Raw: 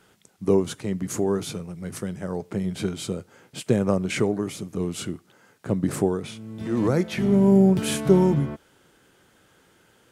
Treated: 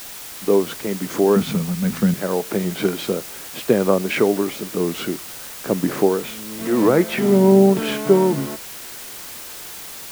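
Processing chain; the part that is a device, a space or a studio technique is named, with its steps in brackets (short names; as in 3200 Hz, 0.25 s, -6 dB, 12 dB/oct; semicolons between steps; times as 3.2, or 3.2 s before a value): dictaphone (BPF 270–3000 Hz; AGC gain up to 11.5 dB; wow and flutter; white noise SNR 15 dB); 1.36–2.14 resonant low shelf 270 Hz +7 dB, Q 3; gain -1 dB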